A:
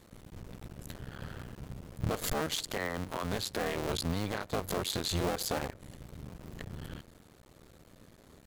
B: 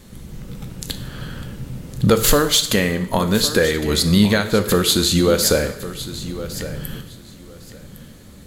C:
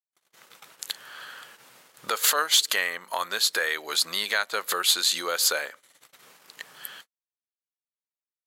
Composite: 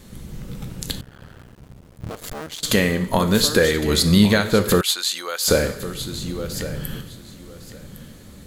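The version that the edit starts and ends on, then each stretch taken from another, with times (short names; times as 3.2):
B
1.01–2.63 from A
4.81–5.48 from C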